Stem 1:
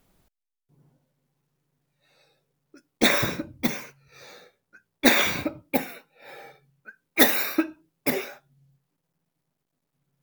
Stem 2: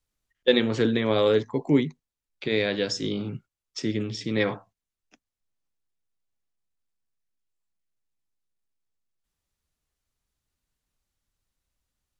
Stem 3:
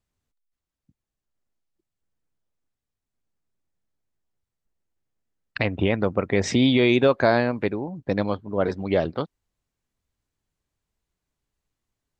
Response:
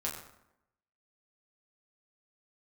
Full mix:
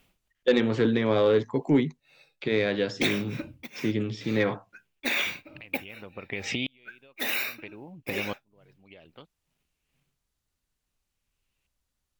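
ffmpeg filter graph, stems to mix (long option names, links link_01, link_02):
-filter_complex "[0:a]tremolo=f=2.3:d=0.97,volume=-0.5dB[link_01];[1:a]acrossover=split=3500[link_02][link_03];[link_03]acompressor=threshold=-48dB:ratio=4:attack=1:release=60[link_04];[link_02][link_04]amix=inputs=2:normalize=0,asoftclip=type=tanh:threshold=-11.5dB,volume=0.5dB[link_05];[2:a]equalizer=frequency=2600:width_type=o:width=0.77:gain=5,acompressor=threshold=-24dB:ratio=5,aeval=exprs='val(0)*pow(10,-38*if(lt(mod(-0.6*n/s,1),2*abs(-0.6)/1000),1-mod(-0.6*n/s,1)/(2*abs(-0.6)/1000),(mod(-0.6*n/s,1)-2*abs(-0.6)/1000)/(1-2*abs(-0.6)/1000))/20)':channel_layout=same,volume=-1.5dB[link_06];[link_01][link_06]amix=inputs=2:normalize=0,equalizer=frequency=2700:width=1.7:gain=12.5,acompressor=threshold=-26dB:ratio=4,volume=0dB[link_07];[link_05][link_07]amix=inputs=2:normalize=0"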